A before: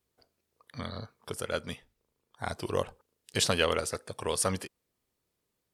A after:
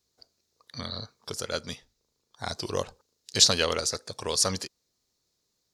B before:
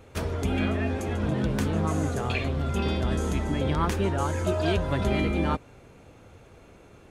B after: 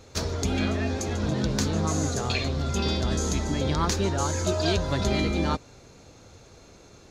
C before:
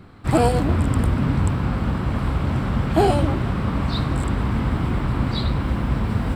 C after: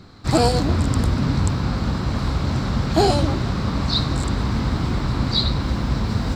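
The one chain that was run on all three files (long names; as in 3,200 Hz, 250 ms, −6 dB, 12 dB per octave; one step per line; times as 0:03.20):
flat-topped bell 5,200 Hz +12.5 dB 1.1 octaves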